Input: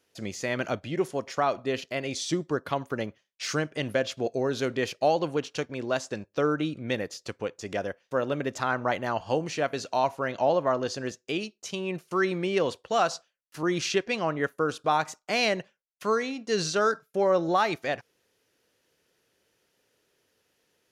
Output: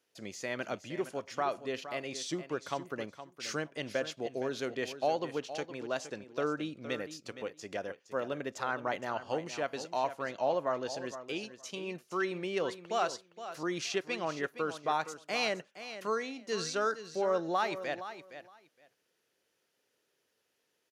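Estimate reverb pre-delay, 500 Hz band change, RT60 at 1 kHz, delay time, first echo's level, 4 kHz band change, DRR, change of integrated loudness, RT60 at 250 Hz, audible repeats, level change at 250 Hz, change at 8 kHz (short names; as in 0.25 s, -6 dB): none, -7.0 dB, none, 0.466 s, -12.0 dB, -6.0 dB, none, -7.0 dB, none, 2, -8.5 dB, -6.0 dB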